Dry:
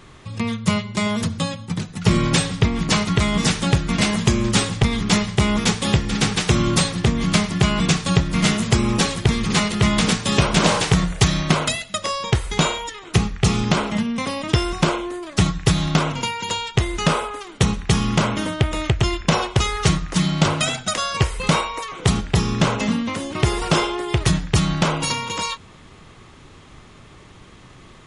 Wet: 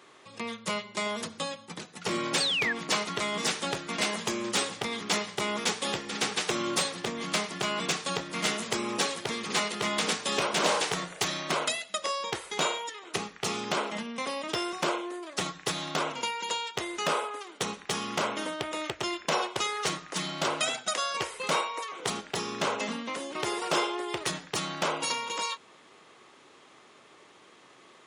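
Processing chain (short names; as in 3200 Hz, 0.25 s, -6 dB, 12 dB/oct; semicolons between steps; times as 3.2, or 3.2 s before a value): painted sound fall, 2.4–2.73, 1600–4800 Hz -21 dBFS; hard clip -9.5 dBFS, distortion -18 dB; Chebyshev high-pass 420 Hz, order 2; gain -6 dB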